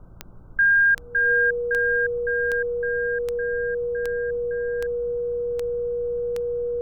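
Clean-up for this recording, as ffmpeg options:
ffmpeg -i in.wav -af "adeclick=threshold=4,bandreject=frequency=58.3:width_type=h:width=4,bandreject=frequency=116.6:width_type=h:width=4,bandreject=frequency=174.9:width_type=h:width=4,bandreject=frequency=480:width=30,afftdn=noise_reduction=30:noise_floor=-39" out.wav

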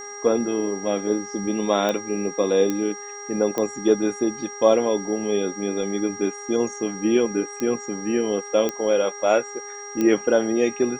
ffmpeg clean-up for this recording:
ffmpeg -i in.wav -af "adeclick=threshold=4,bandreject=frequency=409.3:width_type=h:width=4,bandreject=frequency=818.6:width_type=h:width=4,bandreject=frequency=1227.9:width_type=h:width=4,bandreject=frequency=1637.2:width_type=h:width=4,bandreject=frequency=2046.5:width_type=h:width=4,bandreject=frequency=5700:width=30,agate=range=-21dB:threshold=-28dB" out.wav

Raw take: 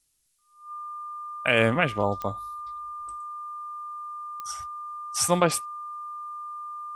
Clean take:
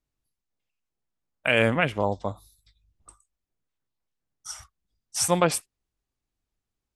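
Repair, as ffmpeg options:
ffmpeg -i in.wav -af "adeclick=threshold=4,bandreject=frequency=1200:width=30,agate=range=-21dB:threshold=-31dB" out.wav

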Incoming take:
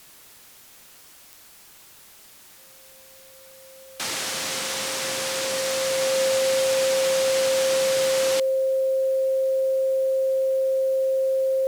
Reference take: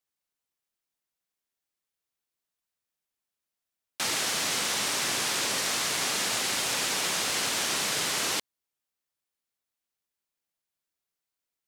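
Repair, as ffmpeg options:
ffmpeg -i in.wav -af "adeclick=threshold=4,bandreject=frequency=530:width=30,afwtdn=0.0035" out.wav

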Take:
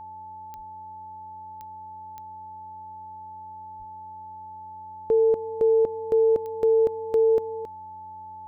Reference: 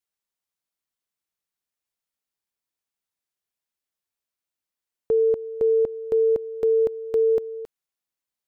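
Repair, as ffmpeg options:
ffmpeg -i in.wav -filter_complex "[0:a]adeclick=threshold=4,bandreject=frequency=91.5:width_type=h:width=4,bandreject=frequency=183:width_type=h:width=4,bandreject=frequency=274.5:width_type=h:width=4,bandreject=frequency=366:width_type=h:width=4,bandreject=frequency=457.5:width_type=h:width=4,bandreject=frequency=549:width_type=h:width=4,bandreject=frequency=870:width=30,asplit=3[link_01][link_02][link_03];[link_01]afade=type=out:start_time=0.56:duration=0.02[link_04];[link_02]highpass=frequency=140:width=0.5412,highpass=frequency=140:width=1.3066,afade=type=in:start_time=0.56:duration=0.02,afade=type=out:start_time=0.68:duration=0.02[link_05];[link_03]afade=type=in:start_time=0.68:duration=0.02[link_06];[link_04][link_05][link_06]amix=inputs=3:normalize=0,asplit=3[link_07][link_08][link_09];[link_07]afade=type=out:start_time=3.78:duration=0.02[link_10];[link_08]highpass=frequency=140:width=0.5412,highpass=frequency=140:width=1.3066,afade=type=in:start_time=3.78:duration=0.02,afade=type=out:start_time=3.9:duration=0.02[link_11];[link_09]afade=type=in:start_time=3.9:duration=0.02[link_12];[link_10][link_11][link_12]amix=inputs=3:normalize=0" out.wav

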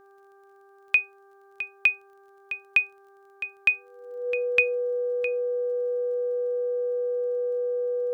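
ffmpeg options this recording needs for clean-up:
ffmpeg -i in.wav -af "adeclick=threshold=4,bandreject=frequency=394.9:width_type=h:width=4,bandreject=frequency=789.8:width_type=h:width=4,bandreject=frequency=1184.7:width_type=h:width=4,bandreject=frequency=1579.6:width_type=h:width=4,bandreject=frequency=490:width=30,agate=range=-21dB:threshold=-47dB" out.wav

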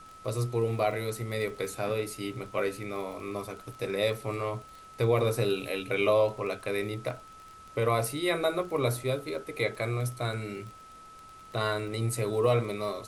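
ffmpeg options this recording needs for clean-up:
ffmpeg -i in.wav -af "adeclick=threshold=4,bandreject=frequency=1300:width=30,agate=range=-21dB:threshold=-42dB" out.wav

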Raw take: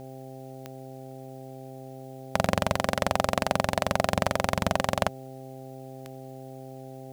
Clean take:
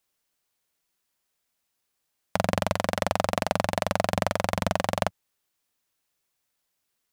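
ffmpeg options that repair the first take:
ffmpeg -i in.wav -af "adeclick=threshold=4,bandreject=frequency=131.8:width_type=h:width=4,bandreject=frequency=263.6:width_type=h:width=4,bandreject=frequency=395.4:width_type=h:width=4,bandreject=frequency=527.2:width_type=h:width=4,bandreject=frequency=659:width_type=h:width=4,bandreject=frequency=790.8:width_type=h:width=4,agate=range=-21dB:threshold=-35dB" out.wav

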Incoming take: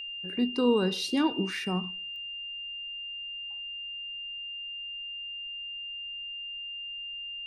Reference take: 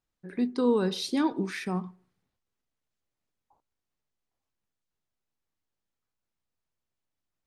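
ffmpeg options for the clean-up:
ffmpeg -i in.wav -af "adeclick=threshold=4,bandreject=frequency=2800:width=30,agate=range=-21dB:threshold=-31dB" out.wav

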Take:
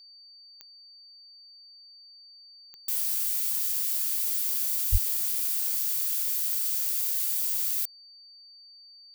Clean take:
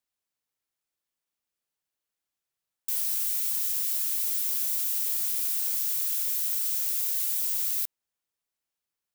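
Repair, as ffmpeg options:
ffmpeg -i in.wav -filter_complex "[0:a]adeclick=threshold=4,bandreject=frequency=4600:width=30,asplit=3[link_01][link_02][link_03];[link_01]afade=type=out:start_time=4.91:duration=0.02[link_04];[link_02]highpass=frequency=140:width=0.5412,highpass=frequency=140:width=1.3066,afade=type=in:start_time=4.91:duration=0.02,afade=type=out:start_time=5.03:duration=0.02[link_05];[link_03]afade=type=in:start_time=5.03:duration=0.02[link_06];[link_04][link_05][link_06]amix=inputs=3:normalize=0" out.wav

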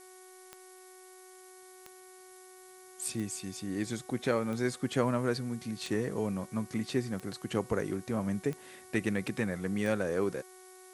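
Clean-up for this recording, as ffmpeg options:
ffmpeg -i in.wav -af "adeclick=threshold=4,bandreject=frequency=371.2:width_type=h:width=4,bandreject=frequency=742.4:width_type=h:width=4,bandreject=frequency=1113.6:width_type=h:width=4,bandreject=frequency=1484.8:width_type=h:width=4,bandreject=frequency=1856:width_type=h:width=4,bandreject=frequency=2227.2:width_type=h:width=4,afftdn=noise_reduction=25:noise_floor=-53" out.wav

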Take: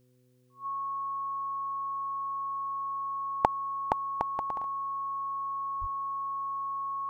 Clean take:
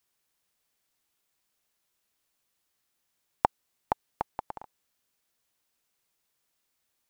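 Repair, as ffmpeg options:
ffmpeg -i in.wav -filter_complex "[0:a]bandreject=frequency=125.5:width_type=h:width=4,bandreject=frequency=251:width_type=h:width=4,bandreject=frequency=376.5:width_type=h:width=4,bandreject=frequency=502:width_type=h:width=4,bandreject=frequency=1100:width=30,asplit=3[link_01][link_02][link_03];[link_01]afade=type=out:start_time=5.8:duration=0.02[link_04];[link_02]highpass=frequency=140:width=0.5412,highpass=frequency=140:width=1.3066,afade=type=in:start_time=5.8:duration=0.02,afade=type=out:start_time=5.92:duration=0.02[link_05];[link_03]afade=type=in:start_time=5.92:duration=0.02[link_06];[link_04][link_05][link_06]amix=inputs=3:normalize=0" out.wav

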